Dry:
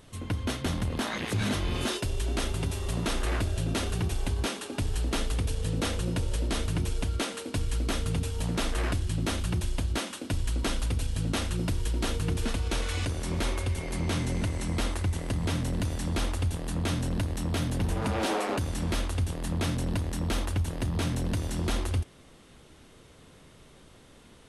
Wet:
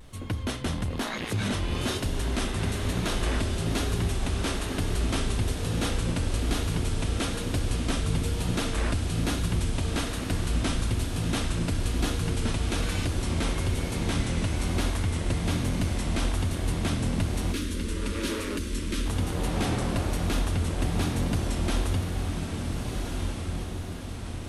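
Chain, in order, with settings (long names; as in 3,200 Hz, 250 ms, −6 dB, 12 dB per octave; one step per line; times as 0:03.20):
feedback delay with all-pass diffusion 1,487 ms, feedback 55%, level −3.5 dB
background noise brown −49 dBFS
pitch vibrato 1.1 Hz 48 cents
0:17.52–0:19.06: phaser with its sweep stopped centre 310 Hz, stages 4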